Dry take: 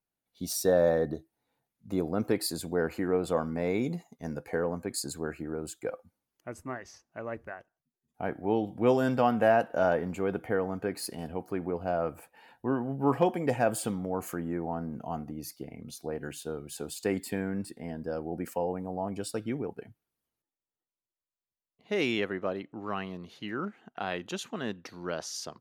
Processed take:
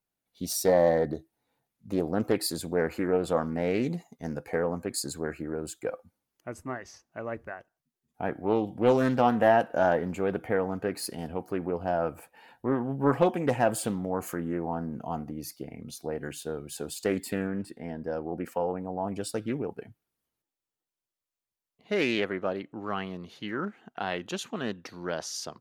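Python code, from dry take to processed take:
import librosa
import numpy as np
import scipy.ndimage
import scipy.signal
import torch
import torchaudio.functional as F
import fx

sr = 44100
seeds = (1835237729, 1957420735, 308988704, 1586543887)

y = fx.bass_treble(x, sr, bass_db=-2, treble_db=-7, at=(17.47, 19.05))
y = fx.doppler_dist(y, sr, depth_ms=0.27)
y = F.gain(torch.from_numpy(y), 2.0).numpy()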